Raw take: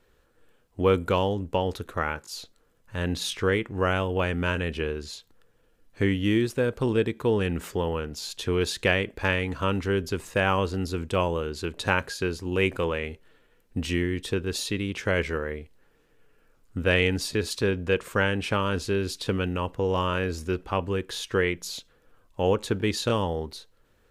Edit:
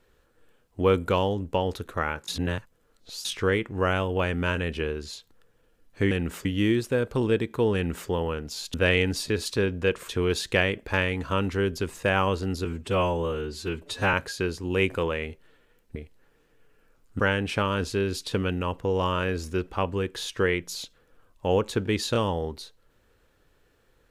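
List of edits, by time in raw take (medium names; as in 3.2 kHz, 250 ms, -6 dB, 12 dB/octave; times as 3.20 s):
2.28–3.25 s: reverse
7.41–7.75 s: copy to 6.11 s
10.96–11.95 s: stretch 1.5×
13.77–15.55 s: delete
16.79–18.14 s: move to 8.40 s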